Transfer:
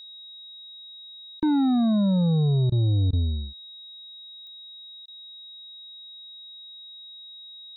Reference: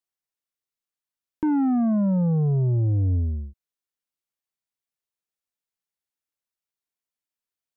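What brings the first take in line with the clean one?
click removal
notch filter 3,800 Hz, Q 30
repair the gap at 0:01.40/0:02.70/0:03.11/0:05.06, 19 ms

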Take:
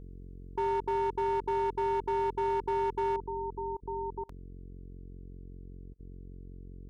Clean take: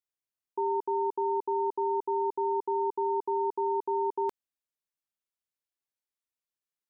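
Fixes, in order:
clipped peaks rebuilt −25 dBFS
hum removal 45.1 Hz, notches 10
repair the gap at 0:03.77/0:04.24/0:05.94, 50 ms
level correction +7 dB, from 0:03.16

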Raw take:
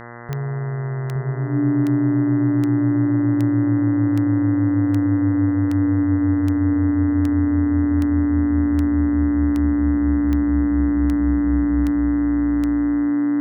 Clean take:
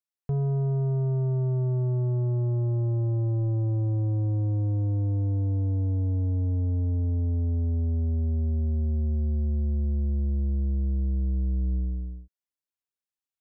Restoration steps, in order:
click removal
hum removal 118.6 Hz, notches 17
notch filter 290 Hz, Q 30
echo removal 862 ms −3.5 dB

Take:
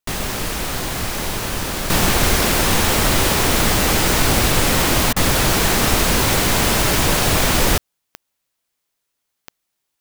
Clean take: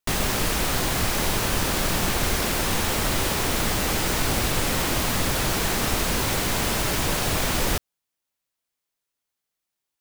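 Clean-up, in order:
click removal
repair the gap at 0:05.13, 32 ms
level 0 dB, from 0:01.90 −7.5 dB

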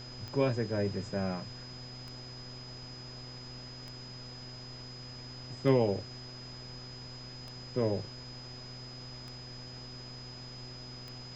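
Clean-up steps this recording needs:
click removal
hum removal 124.7 Hz, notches 18
notch filter 5,000 Hz, Q 30
noise reduction from a noise print 30 dB

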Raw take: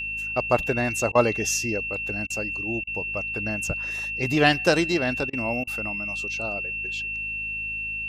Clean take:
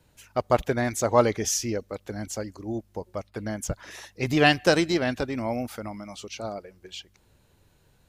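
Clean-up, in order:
hum removal 53 Hz, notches 5
notch filter 2,700 Hz, Q 30
repair the gap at 0:01.12/0:02.27/0:02.84/0:05.30/0:05.64, 30 ms

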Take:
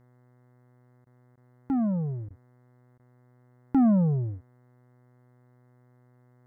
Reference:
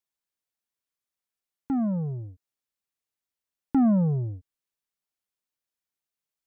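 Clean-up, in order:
hum removal 124 Hz, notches 17
repair the gap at 0:01.05/0:01.36/0:02.29/0:02.98, 13 ms

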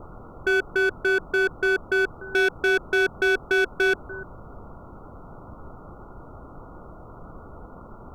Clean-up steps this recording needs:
clipped peaks rebuilt −17 dBFS
noise reduction from a noise print 26 dB
echo removal 295 ms −20 dB

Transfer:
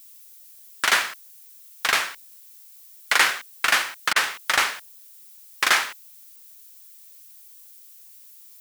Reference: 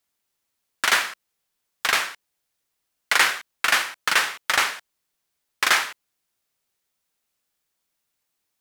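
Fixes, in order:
repair the gap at 0:04.13, 29 ms
noise reduction from a noise print 30 dB

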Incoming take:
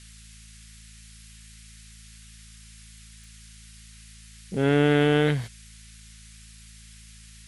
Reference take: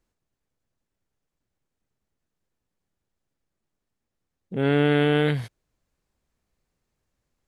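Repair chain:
click removal
hum removal 54.7 Hz, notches 4
noise reduction from a noise print 30 dB

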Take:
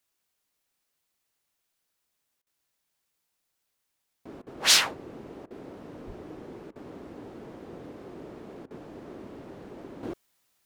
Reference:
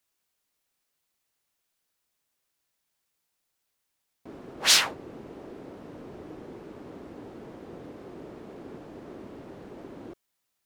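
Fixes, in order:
0:06.06–0:06.18: high-pass filter 140 Hz 24 dB per octave
repair the gap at 0:02.42/0:04.42/0:05.46/0:06.71/0:08.66, 45 ms
level 0 dB, from 0:10.03 −7.5 dB

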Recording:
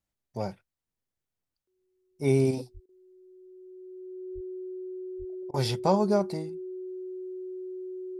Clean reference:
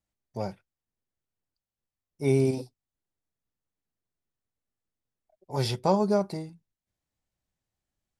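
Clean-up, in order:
notch filter 370 Hz, Q 30
high-pass at the plosives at 0:02.73/0:04.34/0:05.18
repair the gap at 0:02.86/0:05.51, 28 ms

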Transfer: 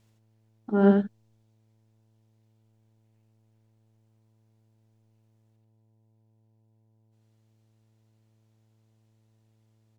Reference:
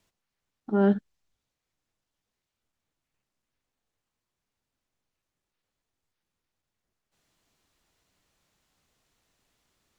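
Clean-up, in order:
hum removal 110 Hz, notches 9
echo removal 86 ms −3 dB
level 0 dB, from 0:05.56 +9 dB

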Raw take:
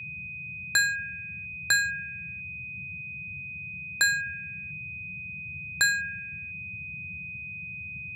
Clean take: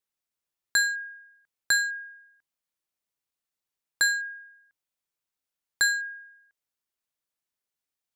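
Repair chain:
notch filter 2,500 Hz, Q 30
noise reduction from a noise print 30 dB

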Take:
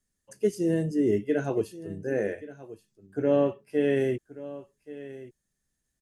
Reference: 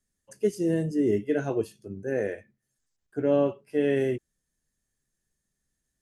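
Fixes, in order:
echo removal 1,128 ms −16.5 dB

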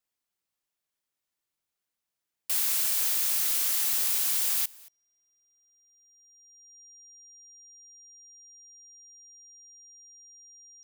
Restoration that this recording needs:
notch filter 5,700 Hz, Q 30
echo removal 226 ms −24 dB

